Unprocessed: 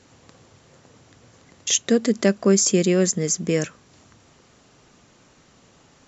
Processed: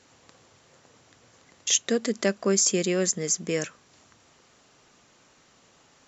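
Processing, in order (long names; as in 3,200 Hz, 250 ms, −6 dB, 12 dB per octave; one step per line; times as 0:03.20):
low-shelf EQ 350 Hz −9 dB
level −2 dB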